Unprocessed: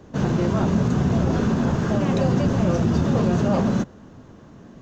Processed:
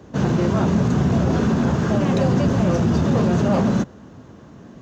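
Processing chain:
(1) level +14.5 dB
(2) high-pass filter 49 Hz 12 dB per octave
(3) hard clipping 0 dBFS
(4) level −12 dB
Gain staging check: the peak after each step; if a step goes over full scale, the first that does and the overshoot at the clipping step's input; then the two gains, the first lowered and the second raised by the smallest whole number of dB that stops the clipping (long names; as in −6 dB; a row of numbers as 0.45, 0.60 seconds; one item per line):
+5.5, +6.0, 0.0, −12.0 dBFS
step 1, 6.0 dB
step 1 +8.5 dB, step 4 −6 dB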